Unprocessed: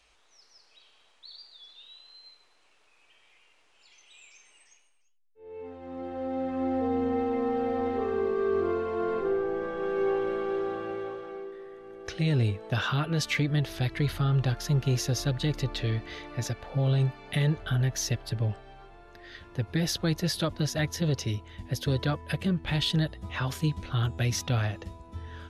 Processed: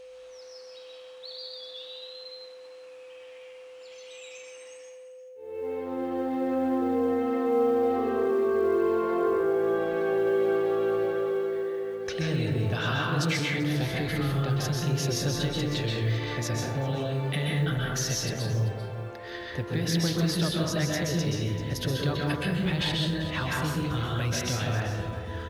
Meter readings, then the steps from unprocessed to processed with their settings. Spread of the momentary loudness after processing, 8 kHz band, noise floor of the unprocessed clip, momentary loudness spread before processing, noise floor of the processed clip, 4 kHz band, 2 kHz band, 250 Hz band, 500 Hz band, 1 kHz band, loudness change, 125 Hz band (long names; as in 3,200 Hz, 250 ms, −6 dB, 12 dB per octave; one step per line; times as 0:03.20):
20 LU, +2.5 dB, −64 dBFS, 16 LU, −46 dBFS, +2.5 dB, +3.0 dB, +2.5 dB, +4.0 dB, +2.5 dB, +1.5 dB, −0.5 dB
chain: on a send: single-tap delay 389 ms −17 dB
on the sum: downward compressor, threshold −27 dBFS, peak gain reduction 6 dB
high-pass filter 120 Hz 6 dB per octave
dense smooth reverb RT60 0.91 s, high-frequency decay 0.45×, pre-delay 115 ms, DRR −2 dB
in parallel at +2 dB: brickwall limiter −28.5 dBFS, peak gain reduction 13.5 dB
on the sum: log-companded quantiser 8 bits
steady tone 510 Hz −41 dBFS
level −2.5 dB